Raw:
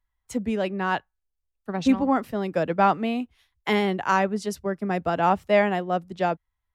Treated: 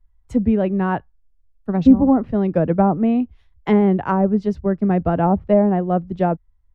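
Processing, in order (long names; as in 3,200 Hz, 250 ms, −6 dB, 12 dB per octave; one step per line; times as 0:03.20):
treble cut that deepens with the level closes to 760 Hz, closed at −16 dBFS
spectral tilt −4 dB per octave
level +1.5 dB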